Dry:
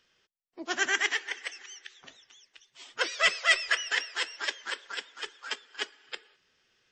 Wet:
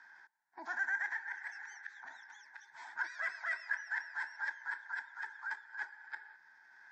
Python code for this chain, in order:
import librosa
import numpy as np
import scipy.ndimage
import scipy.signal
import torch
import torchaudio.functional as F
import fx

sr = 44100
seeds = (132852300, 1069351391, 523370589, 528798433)

y = fx.double_bandpass(x, sr, hz=1200.0, octaves=0.82)
y = fx.fixed_phaser(y, sr, hz=1200.0, stages=4)
y = fx.transient(y, sr, attack_db=-4, sustain_db=5)
y = fx.band_squash(y, sr, depth_pct=70)
y = y * 10.0 ** (3.0 / 20.0)